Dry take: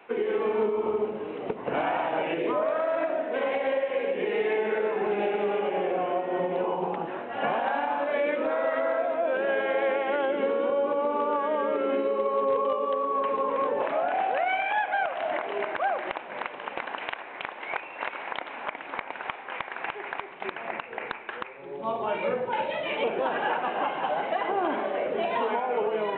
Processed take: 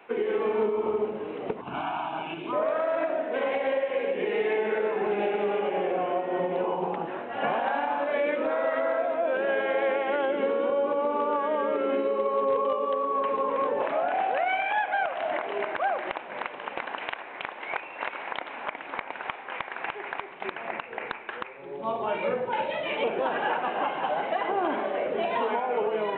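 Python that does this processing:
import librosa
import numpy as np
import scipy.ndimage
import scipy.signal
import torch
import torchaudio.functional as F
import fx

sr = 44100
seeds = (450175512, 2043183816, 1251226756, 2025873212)

y = fx.fixed_phaser(x, sr, hz=1900.0, stages=6, at=(1.61, 2.53))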